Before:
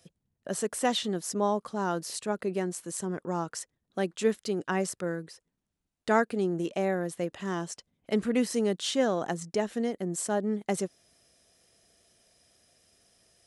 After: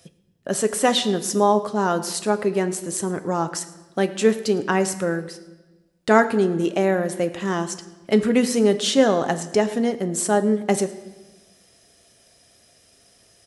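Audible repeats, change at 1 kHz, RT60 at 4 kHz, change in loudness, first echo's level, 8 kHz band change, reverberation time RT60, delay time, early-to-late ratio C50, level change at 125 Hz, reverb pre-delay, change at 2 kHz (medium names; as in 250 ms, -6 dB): 1, +9.0 dB, 1.1 s, +9.0 dB, -21.5 dB, +9.0 dB, 1.2 s, 110 ms, 13.5 dB, +8.0 dB, 7 ms, +9.0 dB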